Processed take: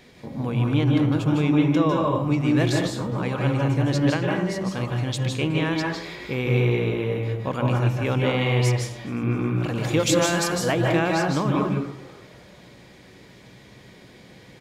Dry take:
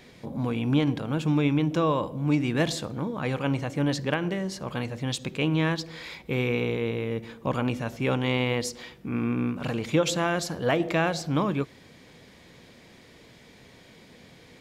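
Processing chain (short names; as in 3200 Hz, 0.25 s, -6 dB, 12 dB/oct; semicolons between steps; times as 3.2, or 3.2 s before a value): 9.75–10.72 high shelf 4200 Hz +8.5 dB; frequency-shifting echo 0.259 s, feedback 53%, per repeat +100 Hz, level -22.5 dB; reverb RT60 0.60 s, pre-delay 0.149 s, DRR -0.5 dB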